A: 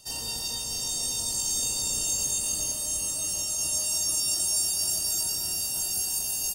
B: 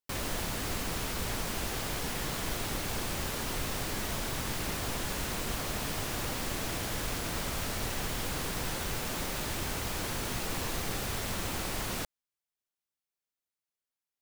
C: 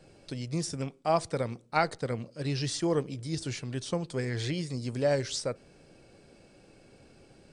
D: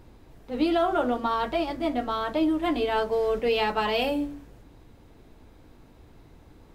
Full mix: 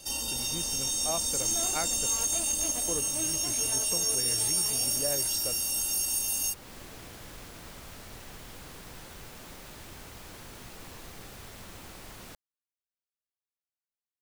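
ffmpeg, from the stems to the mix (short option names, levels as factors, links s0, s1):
-filter_complex "[0:a]aecho=1:1:3.6:0.77,volume=1.26[s0];[1:a]adelay=300,volume=0.266[s1];[2:a]equalizer=f=150:t=o:w=0.77:g=-4,volume=0.708,asplit=3[s2][s3][s4];[s2]atrim=end=2.07,asetpts=PTS-STARTPTS,afade=t=out:st=2.066:d=0.004:c=hsin[s5];[s3]atrim=start=2.07:end=2.88,asetpts=PTS-STARTPTS,volume=0[s6];[s4]atrim=start=2.88,asetpts=PTS-STARTPTS,afade=t=in:d=0.004:c=hsin[s7];[s5][s6][s7]concat=n=3:v=0:a=1,asplit=2[s8][s9];[3:a]acrusher=bits=5:dc=4:mix=0:aa=0.000001,adelay=800,volume=0.282[s10];[s9]apad=whole_len=332684[s11];[s10][s11]sidechaincompress=threshold=0.01:ratio=8:attack=16:release=186[s12];[s0][s1][s8][s12]amix=inputs=4:normalize=0,acompressor=threshold=0.0178:ratio=1.5"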